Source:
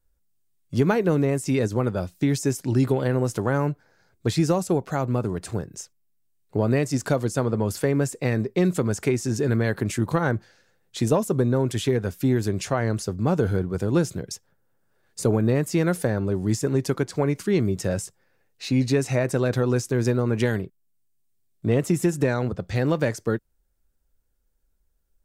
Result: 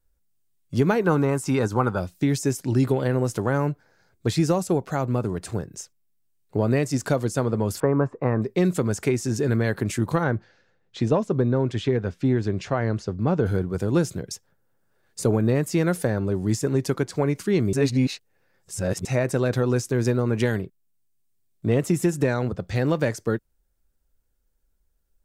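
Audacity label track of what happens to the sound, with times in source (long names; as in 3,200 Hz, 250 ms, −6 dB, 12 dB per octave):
1.020000	1.980000	gain on a spectral selection 750–1,600 Hz +9 dB
7.800000	8.420000	low-pass with resonance 1,100 Hz, resonance Q 4
10.240000	13.460000	high-frequency loss of the air 140 metres
17.730000	19.050000	reverse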